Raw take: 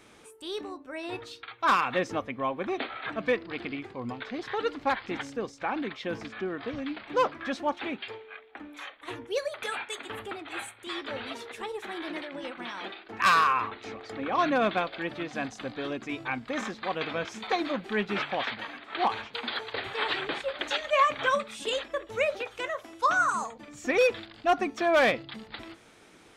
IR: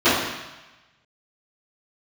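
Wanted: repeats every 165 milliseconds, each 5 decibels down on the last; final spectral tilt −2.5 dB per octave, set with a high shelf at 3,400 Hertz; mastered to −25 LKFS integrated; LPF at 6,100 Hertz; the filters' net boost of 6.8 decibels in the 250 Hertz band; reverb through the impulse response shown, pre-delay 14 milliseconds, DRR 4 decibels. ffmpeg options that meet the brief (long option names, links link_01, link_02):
-filter_complex "[0:a]lowpass=6100,equalizer=frequency=250:width_type=o:gain=8.5,highshelf=frequency=3400:gain=4.5,aecho=1:1:165|330|495|660|825|990|1155:0.562|0.315|0.176|0.0988|0.0553|0.031|0.0173,asplit=2[link_01][link_02];[1:a]atrim=start_sample=2205,adelay=14[link_03];[link_02][link_03]afir=irnorm=-1:irlink=0,volume=-28dB[link_04];[link_01][link_04]amix=inputs=2:normalize=0,volume=-0.5dB"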